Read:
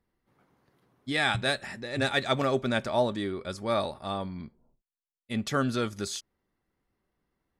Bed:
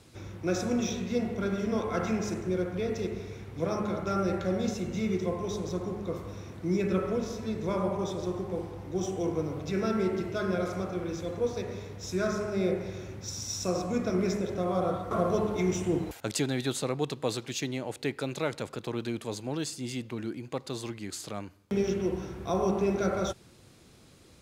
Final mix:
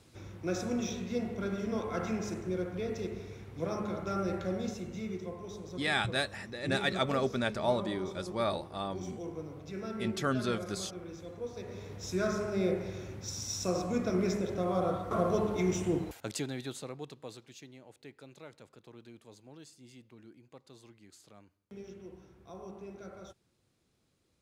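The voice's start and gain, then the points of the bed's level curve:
4.70 s, −4.0 dB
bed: 0:04.45 −4.5 dB
0:05.33 −10.5 dB
0:11.49 −10.5 dB
0:11.93 −2 dB
0:15.88 −2 dB
0:17.70 −19 dB

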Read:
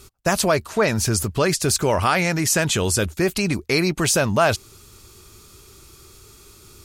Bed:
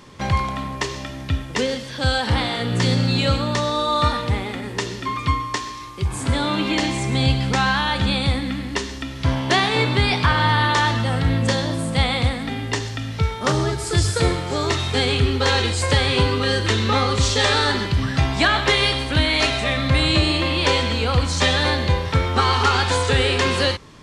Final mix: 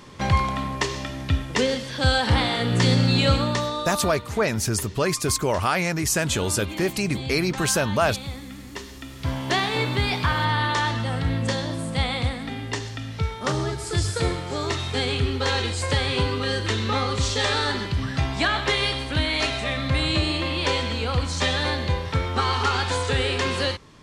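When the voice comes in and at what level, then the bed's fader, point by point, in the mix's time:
3.60 s, −3.5 dB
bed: 0:03.42 0 dB
0:04.15 −13.5 dB
0:08.53 −13.5 dB
0:09.48 −5 dB

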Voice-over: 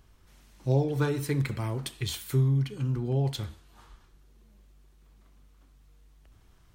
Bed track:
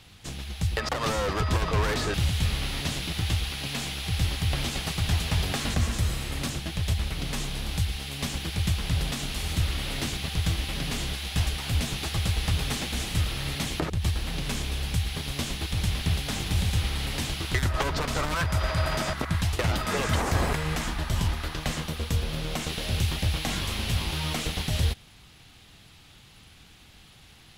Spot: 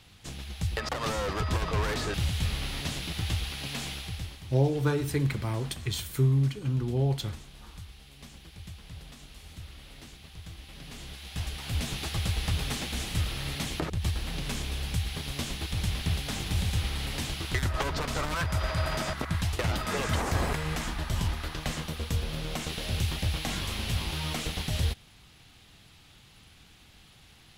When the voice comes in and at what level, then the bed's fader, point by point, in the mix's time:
3.85 s, +0.5 dB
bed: 0:03.94 −3.5 dB
0:04.46 −18 dB
0:10.50 −18 dB
0:11.90 −3 dB

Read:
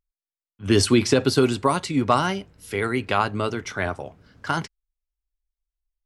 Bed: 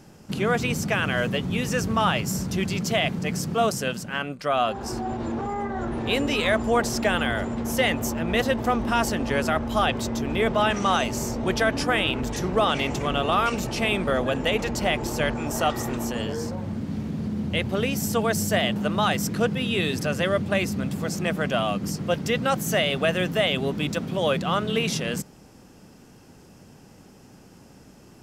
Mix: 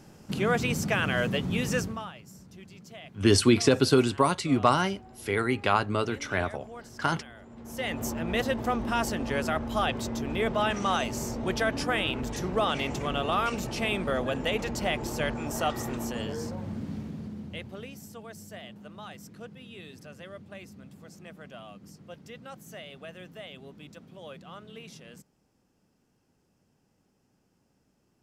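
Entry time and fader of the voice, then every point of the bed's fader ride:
2.55 s, −2.5 dB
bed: 0:01.78 −2.5 dB
0:02.13 −22.5 dB
0:07.41 −22.5 dB
0:08.03 −5 dB
0:16.86 −5 dB
0:18.16 −21 dB

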